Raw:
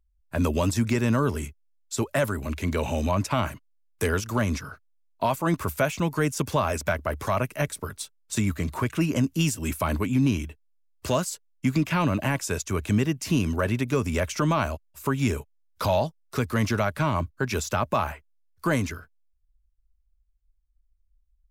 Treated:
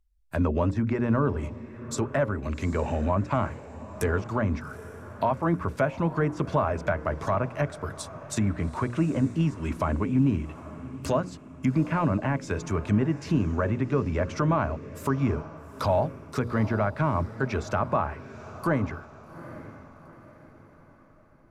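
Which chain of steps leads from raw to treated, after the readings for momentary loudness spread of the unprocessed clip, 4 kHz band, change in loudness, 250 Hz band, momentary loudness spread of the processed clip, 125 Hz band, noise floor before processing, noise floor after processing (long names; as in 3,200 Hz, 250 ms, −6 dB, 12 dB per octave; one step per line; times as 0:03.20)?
8 LU, −10.0 dB, −1.0 dB, −0.5 dB, 14 LU, −0.5 dB, −67 dBFS, −53 dBFS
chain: treble cut that deepens with the level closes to 1,800 Hz, closed at −21.5 dBFS
mains-hum notches 60/120/180/240/300/360/420/480/540 Hz
dynamic equaliser 3,000 Hz, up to −5 dB, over −48 dBFS, Q 1.3
feedback delay with all-pass diffusion 816 ms, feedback 44%, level −15 dB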